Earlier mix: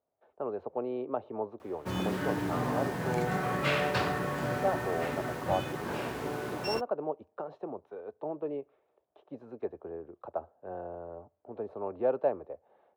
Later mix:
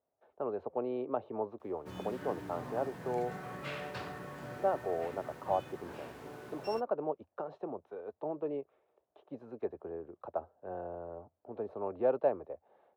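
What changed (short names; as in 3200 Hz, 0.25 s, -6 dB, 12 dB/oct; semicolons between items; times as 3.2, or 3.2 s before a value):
background -12.0 dB; reverb: off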